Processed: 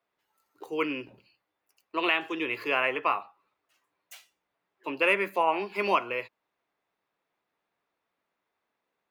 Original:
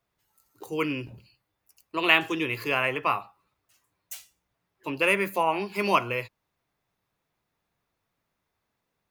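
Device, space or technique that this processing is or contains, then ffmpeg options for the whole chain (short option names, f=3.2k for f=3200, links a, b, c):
DJ mixer with the lows and highs turned down: -filter_complex "[0:a]acrossover=split=240 3900:gain=0.112 1 0.251[a][b][c];[a][b][c]amix=inputs=3:normalize=0,alimiter=limit=-12dB:level=0:latency=1:release=386"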